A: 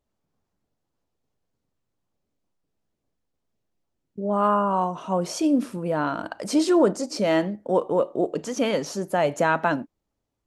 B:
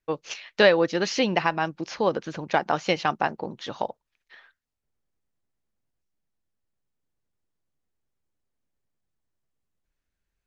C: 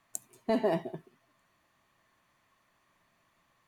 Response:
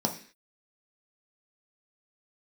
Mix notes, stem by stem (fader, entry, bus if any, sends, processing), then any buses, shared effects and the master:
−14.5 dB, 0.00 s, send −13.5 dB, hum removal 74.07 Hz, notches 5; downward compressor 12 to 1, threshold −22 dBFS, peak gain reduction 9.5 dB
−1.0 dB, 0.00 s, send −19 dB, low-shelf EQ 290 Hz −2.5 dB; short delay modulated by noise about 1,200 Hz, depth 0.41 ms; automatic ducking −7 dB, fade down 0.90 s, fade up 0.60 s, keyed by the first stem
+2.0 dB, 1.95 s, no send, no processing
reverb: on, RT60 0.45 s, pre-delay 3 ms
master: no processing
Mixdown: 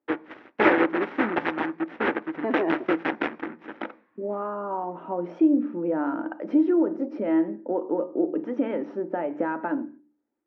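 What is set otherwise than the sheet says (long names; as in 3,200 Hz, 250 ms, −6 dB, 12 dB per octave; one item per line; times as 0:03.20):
stem A −14.5 dB → −4.5 dB
master: extra loudspeaker in its box 180–2,100 Hz, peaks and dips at 190 Hz −10 dB, 320 Hz +9 dB, 660 Hz −5 dB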